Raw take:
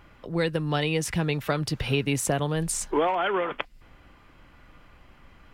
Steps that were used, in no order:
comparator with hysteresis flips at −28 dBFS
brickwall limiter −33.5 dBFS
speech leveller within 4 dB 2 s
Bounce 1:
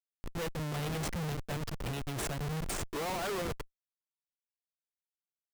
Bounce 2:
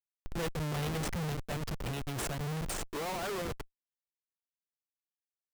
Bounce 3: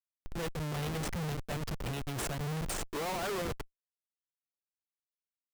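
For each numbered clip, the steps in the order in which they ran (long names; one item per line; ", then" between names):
speech leveller, then comparator with hysteresis, then brickwall limiter
comparator with hysteresis, then brickwall limiter, then speech leveller
comparator with hysteresis, then speech leveller, then brickwall limiter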